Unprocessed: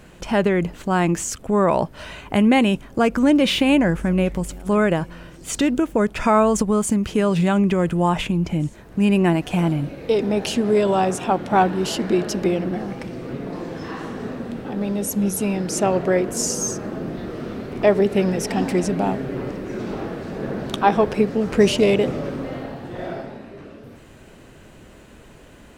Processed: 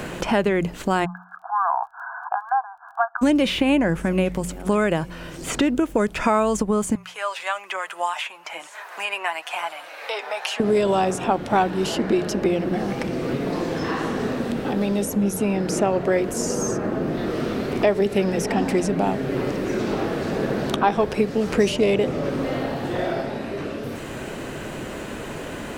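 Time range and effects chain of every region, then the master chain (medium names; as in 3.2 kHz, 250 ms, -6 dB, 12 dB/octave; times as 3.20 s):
1.04–3.21 s: brick-wall FIR band-pass 680–1700 Hz + crackle 13 per s -56 dBFS
6.95–10.60 s: high-pass 820 Hz 24 dB/octave + flange 1.1 Hz, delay 4.6 ms, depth 3 ms, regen +42%
whole clip: peaking EQ 210 Hz -2 dB; hum notches 60/120/180 Hz; three bands compressed up and down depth 70%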